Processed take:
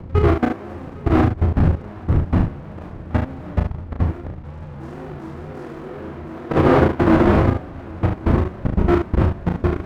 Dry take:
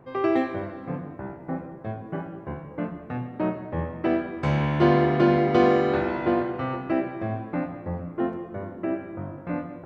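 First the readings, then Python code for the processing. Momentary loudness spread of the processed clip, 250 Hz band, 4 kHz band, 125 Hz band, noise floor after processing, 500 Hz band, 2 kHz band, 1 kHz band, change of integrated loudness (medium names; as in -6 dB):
19 LU, +5.0 dB, +1.5 dB, +10.5 dB, -35 dBFS, +2.5 dB, +3.0 dB, +3.0 dB, +6.5 dB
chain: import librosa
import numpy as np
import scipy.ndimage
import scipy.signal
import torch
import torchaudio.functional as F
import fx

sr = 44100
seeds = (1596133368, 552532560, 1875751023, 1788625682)

p1 = fx.halfwave_hold(x, sr)
p2 = fx.dmg_wind(p1, sr, seeds[0], corner_hz=120.0, level_db=-25.0)
p3 = fx.wow_flutter(p2, sr, seeds[1], rate_hz=2.1, depth_cents=120.0)
p4 = fx.highpass(p3, sr, hz=52.0, slope=6)
p5 = fx.peak_eq(p4, sr, hz=79.0, db=13.0, octaves=0.23)
p6 = fx.auto_swell(p5, sr, attack_ms=159.0)
p7 = fx.echo_feedback(p6, sr, ms=804, feedback_pct=32, wet_db=-6.5)
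p8 = fx.over_compress(p7, sr, threshold_db=-21.0, ratio=-0.5)
p9 = scipy.signal.sosfilt(scipy.signal.butter(2, 1600.0, 'lowpass', fs=sr, output='sos'), p8)
p10 = np.sign(p9) * np.maximum(np.abs(p9) - 10.0 ** (-48.0 / 20.0), 0.0)
p11 = fx.level_steps(p10, sr, step_db=21)
p12 = p11 + fx.room_early_taps(p11, sr, ms=(34, 72), db=(-4.0, -6.5), dry=0)
y = p12 * 10.0 ** (7.0 / 20.0)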